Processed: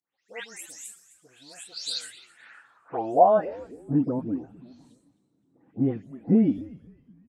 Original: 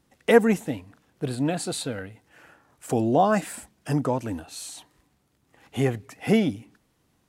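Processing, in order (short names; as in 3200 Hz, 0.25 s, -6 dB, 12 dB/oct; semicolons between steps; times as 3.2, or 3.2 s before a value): spectral delay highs late, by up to 0.284 s; frequency-shifting echo 0.26 s, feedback 38%, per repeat -130 Hz, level -17 dB; band-pass sweep 7300 Hz -> 250 Hz, 1.57–3.91; gain +6.5 dB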